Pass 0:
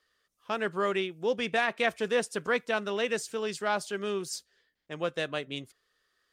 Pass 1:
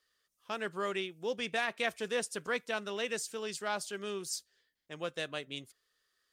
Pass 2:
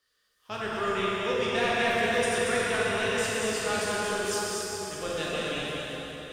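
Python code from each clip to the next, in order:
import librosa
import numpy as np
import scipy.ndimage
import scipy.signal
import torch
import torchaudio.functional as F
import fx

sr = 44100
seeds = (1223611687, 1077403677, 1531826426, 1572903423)

y1 = fx.high_shelf(x, sr, hz=3500.0, db=8.5)
y1 = F.gain(torch.from_numpy(y1), -7.0).numpy()
y2 = fx.octave_divider(y1, sr, octaves=1, level_db=-4.0)
y2 = y2 + 10.0 ** (-5.0 / 20.0) * np.pad(y2, (int(233 * sr / 1000.0), 0))[:len(y2)]
y2 = fx.rev_plate(y2, sr, seeds[0], rt60_s=4.8, hf_ratio=0.7, predelay_ms=0, drr_db=-7.0)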